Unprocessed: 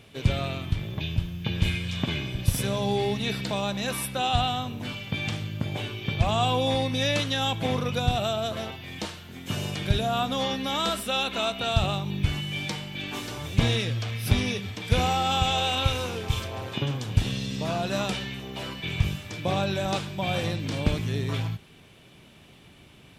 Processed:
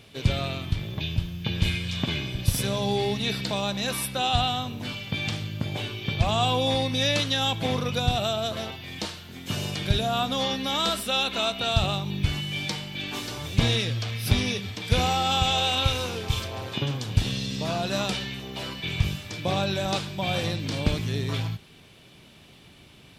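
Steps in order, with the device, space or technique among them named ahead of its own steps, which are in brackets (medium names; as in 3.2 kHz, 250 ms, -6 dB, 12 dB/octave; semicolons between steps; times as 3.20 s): presence and air boost (peaking EQ 4.5 kHz +5 dB 0.8 oct; treble shelf 11 kHz +3 dB)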